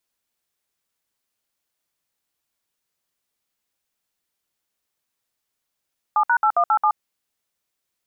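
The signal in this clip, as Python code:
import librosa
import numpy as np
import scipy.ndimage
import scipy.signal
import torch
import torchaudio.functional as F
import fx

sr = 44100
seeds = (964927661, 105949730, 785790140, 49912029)

y = fx.dtmf(sr, digits='7#8187', tone_ms=74, gap_ms=61, level_db=-17.0)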